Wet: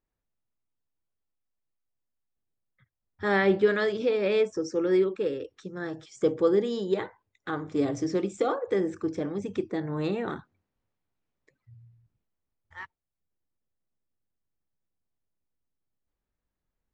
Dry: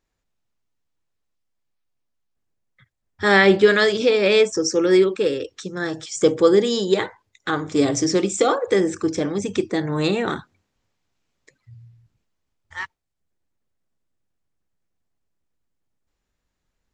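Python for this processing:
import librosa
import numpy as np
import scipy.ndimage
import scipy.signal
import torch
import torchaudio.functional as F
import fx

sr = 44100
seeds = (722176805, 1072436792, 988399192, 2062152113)

y = fx.lowpass(x, sr, hz=1500.0, slope=6)
y = y * librosa.db_to_amplitude(-7.5)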